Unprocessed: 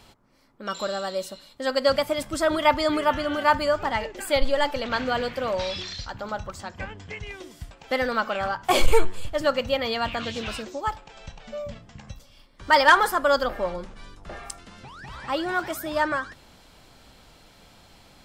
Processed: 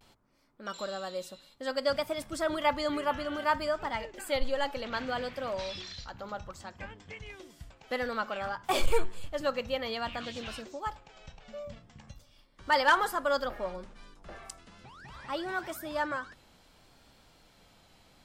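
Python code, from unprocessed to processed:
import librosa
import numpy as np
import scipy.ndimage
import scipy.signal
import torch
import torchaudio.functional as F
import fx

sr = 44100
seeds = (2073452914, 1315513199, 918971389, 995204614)

y = fx.vibrato(x, sr, rate_hz=0.6, depth_cents=53.0)
y = fx.hum_notches(y, sr, base_hz=50, count=2)
y = F.gain(torch.from_numpy(y), -8.0).numpy()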